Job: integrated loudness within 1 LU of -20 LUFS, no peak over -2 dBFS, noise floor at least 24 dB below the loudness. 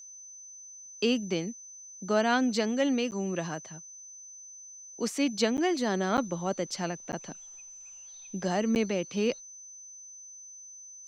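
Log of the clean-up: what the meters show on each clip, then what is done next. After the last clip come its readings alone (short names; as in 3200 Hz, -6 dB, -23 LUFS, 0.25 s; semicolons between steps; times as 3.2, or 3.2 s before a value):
dropouts 5; longest dropout 9.7 ms; steady tone 6100 Hz; tone level -45 dBFS; loudness -29.5 LUFS; peak -12.0 dBFS; loudness target -20.0 LUFS
-> interpolate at 3.11/5.57/6.17/7.12/8.75, 9.7 ms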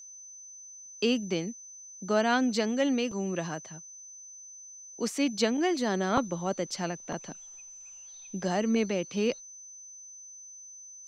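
dropouts 0; steady tone 6100 Hz; tone level -45 dBFS
-> notch 6100 Hz, Q 30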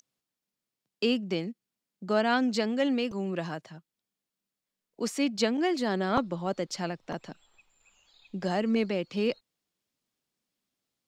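steady tone none; loudness -29.5 LUFS; peak -12.0 dBFS; loudness target -20.0 LUFS
-> gain +9.5 dB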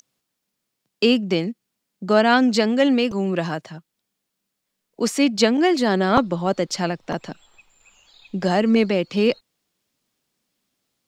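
loudness -20.0 LUFS; peak -2.5 dBFS; noise floor -79 dBFS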